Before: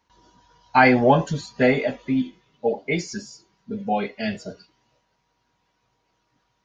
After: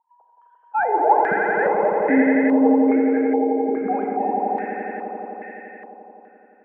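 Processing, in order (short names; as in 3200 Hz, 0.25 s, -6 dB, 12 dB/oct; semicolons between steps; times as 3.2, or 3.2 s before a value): sine-wave speech; compressor 1.5:1, threshold -26 dBFS, peak gain reduction 6 dB; soft clip -11 dBFS, distortion -24 dB; bell 270 Hz +6 dB 2.5 oct; swelling echo 86 ms, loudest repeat 5, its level -5.5 dB; Schroeder reverb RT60 1.4 s, combs from 30 ms, DRR 5 dB; stepped low-pass 2.4 Hz 840–1800 Hz; gain -6 dB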